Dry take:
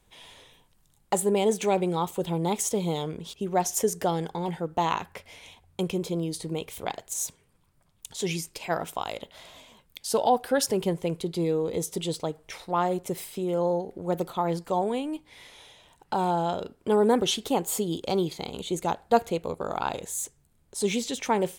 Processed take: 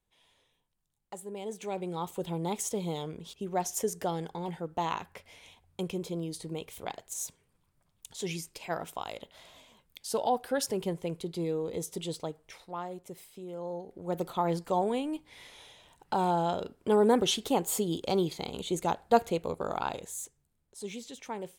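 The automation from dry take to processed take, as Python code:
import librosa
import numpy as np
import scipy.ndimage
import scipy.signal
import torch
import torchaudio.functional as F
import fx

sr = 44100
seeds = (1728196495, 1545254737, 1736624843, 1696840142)

y = fx.gain(x, sr, db=fx.line((1.24, -18.0), (2.13, -6.0), (12.26, -6.0), (12.86, -13.5), (13.6, -13.5), (14.33, -2.0), (19.68, -2.0), (20.77, -13.5)))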